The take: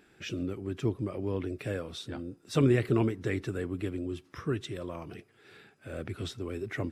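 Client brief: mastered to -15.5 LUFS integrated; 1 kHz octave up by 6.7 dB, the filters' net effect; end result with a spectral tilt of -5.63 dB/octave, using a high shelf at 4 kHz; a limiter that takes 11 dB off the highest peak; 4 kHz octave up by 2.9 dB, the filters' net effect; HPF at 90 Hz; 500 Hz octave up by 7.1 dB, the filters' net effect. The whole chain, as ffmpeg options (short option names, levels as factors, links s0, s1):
-af "highpass=90,equalizer=f=500:t=o:g=8.5,equalizer=f=1000:t=o:g=6,highshelf=f=4000:g=-6.5,equalizer=f=4000:t=o:g=6.5,volume=6.68,alimiter=limit=0.75:level=0:latency=1"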